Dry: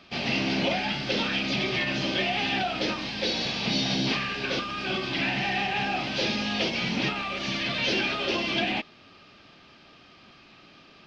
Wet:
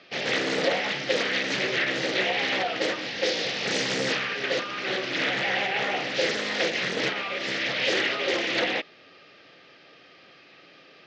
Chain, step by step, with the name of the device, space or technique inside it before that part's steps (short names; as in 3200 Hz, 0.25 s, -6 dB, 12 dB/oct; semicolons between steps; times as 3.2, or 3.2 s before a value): full-range speaker at full volume (Doppler distortion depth 0.9 ms; speaker cabinet 170–6900 Hz, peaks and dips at 220 Hz -9 dB, 500 Hz +9 dB, 990 Hz -6 dB, 1900 Hz +7 dB)